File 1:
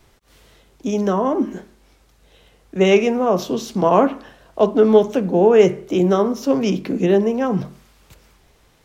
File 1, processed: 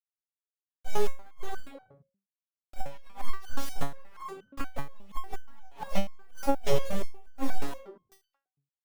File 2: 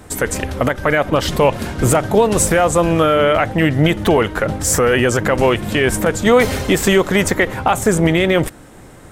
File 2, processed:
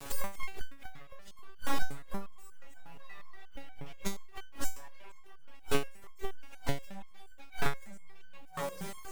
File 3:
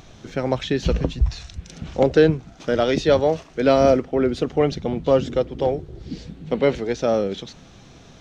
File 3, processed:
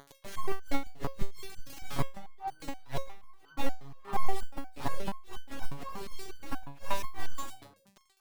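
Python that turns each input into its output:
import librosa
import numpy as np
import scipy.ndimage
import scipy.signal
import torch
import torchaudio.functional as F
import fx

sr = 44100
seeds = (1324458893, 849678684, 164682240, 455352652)

p1 = np.abs(x)
p2 = fx.quant_dither(p1, sr, seeds[0], bits=6, dither='none')
p3 = p2 + fx.echo_stepped(p2, sr, ms=113, hz=2800.0, octaves=-1.4, feedback_pct=70, wet_db=-6, dry=0)
p4 = fx.gate_flip(p3, sr, shuts_db=-9.0, range_db=-31)
p5 = fx.rider(p4, sr, range_db=5, speed_s=2.0)
p6 = p4 + F.gain(torch.from_numpy(p5), -1.0).numpy()
p7 = fx.resonator_held(p6, sr, hz=8.4, low_hz=140.0, high_hz=1500.0)
y = F.gain(torch.from_numpy(p7), 1.0).numpy()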